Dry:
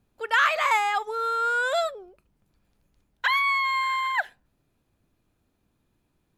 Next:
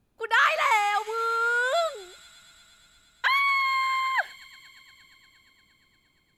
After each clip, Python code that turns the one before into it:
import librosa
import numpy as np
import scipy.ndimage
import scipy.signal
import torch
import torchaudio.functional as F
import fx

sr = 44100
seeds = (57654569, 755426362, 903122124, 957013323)

y = fx.echo_wet_highpass(x, sr, ms=117, feedback_pct=85, hz=4300.0, wet_db=-11)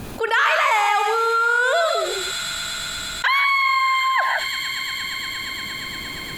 y = fx.low_shelf(x, sr, hz=140.0, db=-5.5)
y = fx.rev_gated(y, sr, seeds[0], gate_ms=190, shape='rising', drr_db=6.5)
y = fx.env_flatten(y, sr, amount_pct=70)
y = y * librosa.db_to_amplitude(2.0)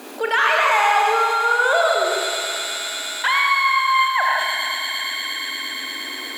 y = scipy.signal.sosfilt(scipy.signal.ellip(4, 1.0, 40, 260.0, 'highpass', fs=sr, output='sos'), x)
y = fx.room_early_taps(y, sr, ms=(38, 73), db=(-11.5, -10.5))
y = fx.echo_crushed(y, sr, ms=106, feedback_pct=80, bits=8, wet_db=-8)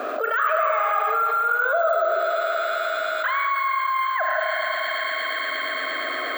y = fx.double_bandpass(x, sr, hz=900.0, octaves=0.95)
y = np.repeat(y[::2], 2)[:len(y)]
y = fx.env_flatten(y, sr, amount_pct=70)
y = y * librosa.db_to_amplitude(-2.0)